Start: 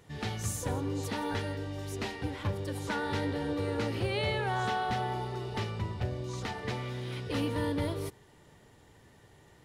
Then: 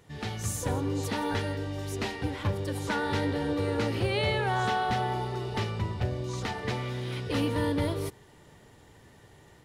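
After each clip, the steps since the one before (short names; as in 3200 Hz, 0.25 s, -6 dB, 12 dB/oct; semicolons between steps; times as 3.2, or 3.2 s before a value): AGC gain up to 3.5 dB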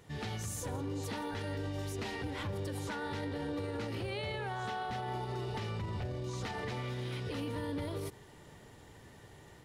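limiter -30.5 dBFS, peak gain reduction 12 dB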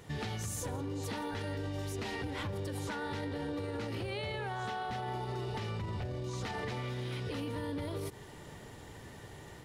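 compressor, threshold -40 dBFS, peak gain reduction 6.5 dB; gain +5.5 dB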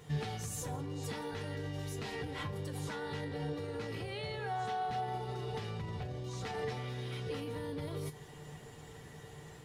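resonator 150 Hz, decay 0.18 s, harmonics odd, mix 80%; gain +7.5 dB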